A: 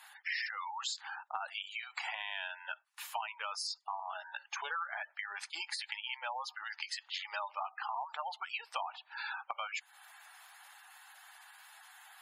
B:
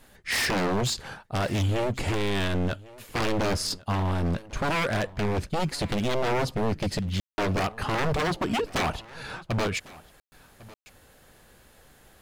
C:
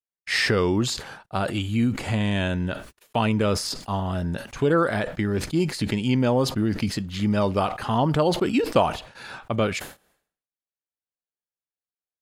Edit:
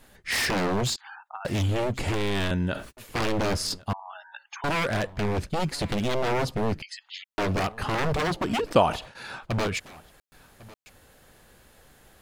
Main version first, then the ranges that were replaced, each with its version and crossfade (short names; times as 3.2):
B
0.96–1.45 from A
2.51–2.97 from C
3.93–4.64 from A
6.82–7.24 from A
8.71–9.45 from C